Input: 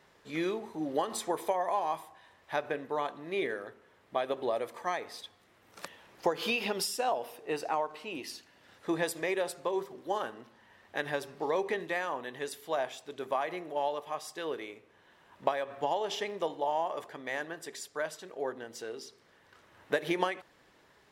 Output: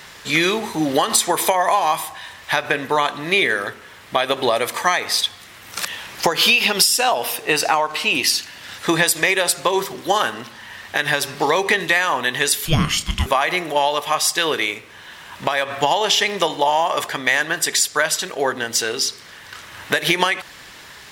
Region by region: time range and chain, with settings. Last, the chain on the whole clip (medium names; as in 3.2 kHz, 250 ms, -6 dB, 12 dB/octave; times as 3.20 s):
12.65–13.26 s: frequency shift -480 Hz + doubling 27 ms -11 dB
whole clip: amplifier tone stack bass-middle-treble 5-5-5; compression 4:1, threshold -48 dBFS; loudness maximiser +35.5 dB; trim -1 dB